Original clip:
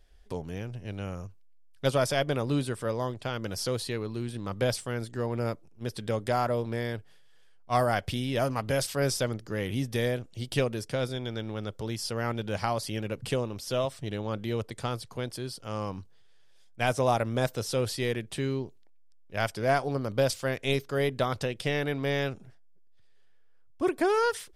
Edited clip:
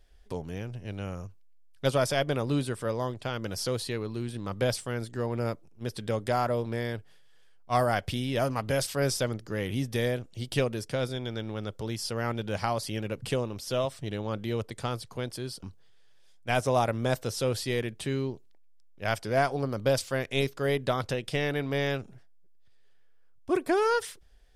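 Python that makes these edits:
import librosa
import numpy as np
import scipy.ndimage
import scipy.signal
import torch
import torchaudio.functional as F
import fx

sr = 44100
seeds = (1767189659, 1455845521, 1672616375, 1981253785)

y = fx.edit(x, sr, fx.cut(start_s=15.63, length_s=0.32), tone=tone)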